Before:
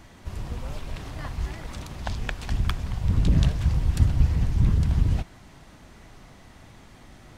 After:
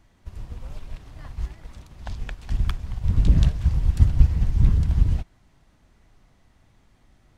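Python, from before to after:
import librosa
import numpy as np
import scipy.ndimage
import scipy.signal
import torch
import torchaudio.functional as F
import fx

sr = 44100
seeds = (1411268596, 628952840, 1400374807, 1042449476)

y = fx.low_shelf(x, sr, hz=80.0, db=8.5)
y = fx.upward_expand(y, sr, threshold_db=-35.0, expansion=1.5)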